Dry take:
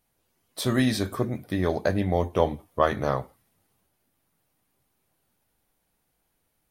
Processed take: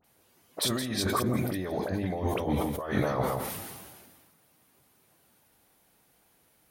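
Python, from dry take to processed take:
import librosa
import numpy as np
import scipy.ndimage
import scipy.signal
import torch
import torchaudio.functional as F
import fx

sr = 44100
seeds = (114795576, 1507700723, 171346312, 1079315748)

p1 = fx.highpass(x, sr, hz=130.0, slope=6)
p2 = fx.over_compress(p1, sr, threshold_db=-34.0, ratio=-1.0)
p3 = fx.dispersion(p2, sr, late='highs', ms=43.0, hz=2100.0)
p4 = p3 + fx.echo_single(p3, sr, ms=168, db=-13.5, dry=0)
p5 = fx.sustainer(p4, sr, db_per_s=34.0)
y = p5 * librosa.db_to_amplitude(2.0)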